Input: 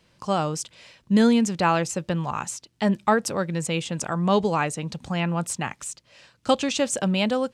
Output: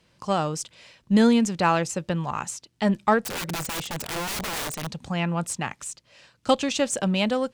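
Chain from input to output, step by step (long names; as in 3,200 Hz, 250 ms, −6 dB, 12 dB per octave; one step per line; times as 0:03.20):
harmonic generator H 6 −36 dB, 7 −35 dB, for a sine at −7.5 dBFS
0:03.22–0:04.87: wrap-around overflow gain 25 dB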